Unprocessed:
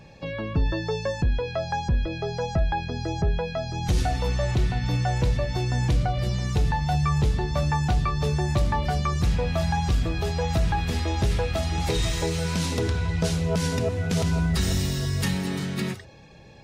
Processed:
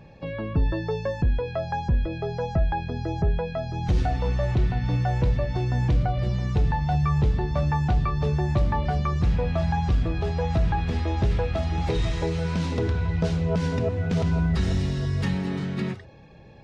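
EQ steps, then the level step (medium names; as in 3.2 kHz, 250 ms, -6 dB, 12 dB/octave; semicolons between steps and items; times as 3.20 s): tape spacing loss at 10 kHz 21 dB; +1.0 dB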